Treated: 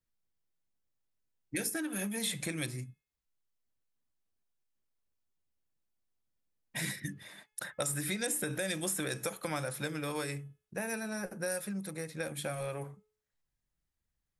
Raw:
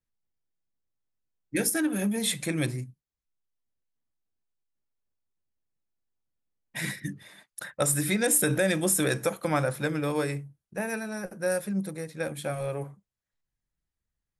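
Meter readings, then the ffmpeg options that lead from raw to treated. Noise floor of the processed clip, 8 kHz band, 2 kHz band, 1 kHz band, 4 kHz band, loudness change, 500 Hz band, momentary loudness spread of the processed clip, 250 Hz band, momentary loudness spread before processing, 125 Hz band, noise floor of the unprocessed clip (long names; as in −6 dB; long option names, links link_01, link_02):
below −85 dBFS, −7.5 dB, −6.0 dB, −7.5 dB, −4.5 dB, −8.0 dB, −9.0 dB, 10 LU, −9.0 dB, 15 LU, −8.5 dB, below −85 dBFS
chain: -filter_complex "[0:a]acrossover=split=970|3100[link_01][link_02][link_03];[link_01]acompressor=threshold=-37dB:ratio=4[link_04];[link_02]acompressor=threshold=-42dB:ratio=4[link_05];[link_03]acompressor=threshold=-35dB:ratio=4[link_06];[link_04][link_05][link_06]amix=inputs=3:normalize=0,bandreject=frequency=427.8:width_type=h:width=4,bandreject=frequency=855.6:width_type=h:width=4,bandreject=frequency=1283.4:width_type=h:width=4,bandreject=frequency=1711.2:width_type=h:width=4,bandreject=frequency=2139:width_type=h:width=4,bandreject=frequency=2566.8:width_type=h:width=4,bandreject=frequency=2994.6:width_type=h:width=4,bandreject=frequency=3422.4:width_type=h:width=4"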